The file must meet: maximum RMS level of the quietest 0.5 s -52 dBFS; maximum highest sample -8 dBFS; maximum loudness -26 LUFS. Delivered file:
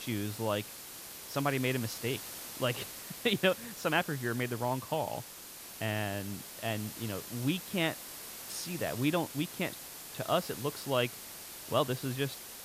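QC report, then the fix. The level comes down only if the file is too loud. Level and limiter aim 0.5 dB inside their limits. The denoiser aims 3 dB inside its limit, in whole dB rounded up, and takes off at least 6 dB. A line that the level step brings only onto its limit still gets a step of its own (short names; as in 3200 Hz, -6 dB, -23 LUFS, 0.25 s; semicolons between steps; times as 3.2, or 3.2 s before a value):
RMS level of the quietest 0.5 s -48 dBFS: fail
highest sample -14.0 dBFS: OK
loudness -34.5 LUFS: OK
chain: denoiser 7 dB, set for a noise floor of -48 dBFS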